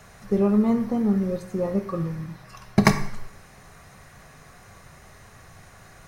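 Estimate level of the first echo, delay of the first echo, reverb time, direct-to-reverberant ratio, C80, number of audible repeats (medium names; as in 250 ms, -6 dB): no echo, no echo, 0.75 s, 8.0 dB, 14.0 dB, no echo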